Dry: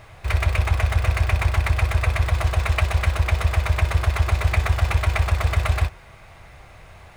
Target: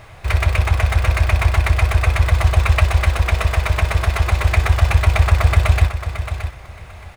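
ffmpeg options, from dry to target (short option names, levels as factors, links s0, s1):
-af "aecho=1:1:622|1244|1866:0.355|0.0639|0.0115,volume=1.58"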